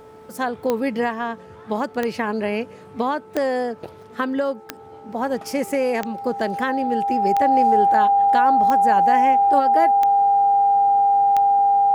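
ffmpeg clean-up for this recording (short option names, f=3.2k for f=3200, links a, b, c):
-af "adeclick=t=4,bandreject=f=437.1:t=h:w=4,bandreject=f=874.2:t=h:w=4,bandreject=f=1.3113k:t=h:w=4,bandreject=f=800:w=30"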